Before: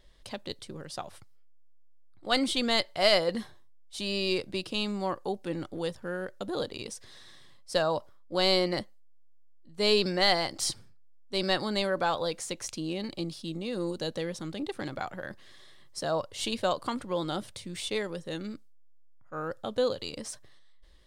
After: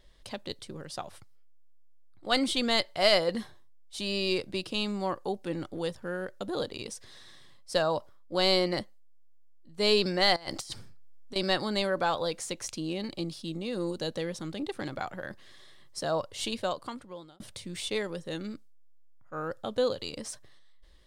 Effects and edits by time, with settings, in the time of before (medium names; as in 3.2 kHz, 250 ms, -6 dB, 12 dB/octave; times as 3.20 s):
10.36–11.36 s: compressor with a negative ratio -37 dBFS, ratio -0.5
16.34–17.40 s: fade out